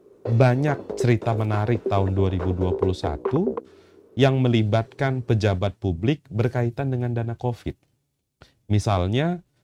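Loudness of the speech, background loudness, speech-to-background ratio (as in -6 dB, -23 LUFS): -23.5 LUFS, -31.5 LUFS, 8.0 dB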